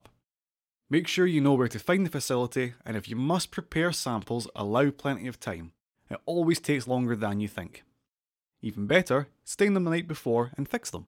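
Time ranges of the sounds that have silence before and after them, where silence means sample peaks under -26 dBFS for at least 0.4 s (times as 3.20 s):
0.92–5.53 s
6.11–7.60 s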